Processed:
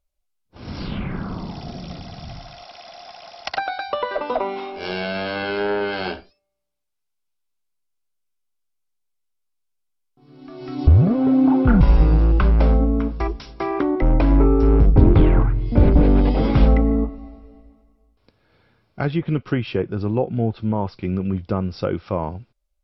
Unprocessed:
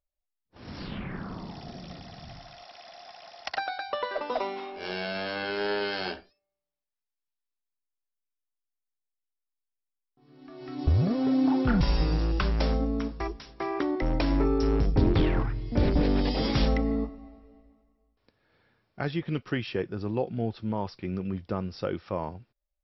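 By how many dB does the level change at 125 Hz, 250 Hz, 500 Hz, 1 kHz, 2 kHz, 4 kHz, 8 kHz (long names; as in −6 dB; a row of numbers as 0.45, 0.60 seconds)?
+10.5 dB, +8.5 dB, +7.5 dB, +7.0 dB, +5.0 dB, +1.5 dB, can't be measured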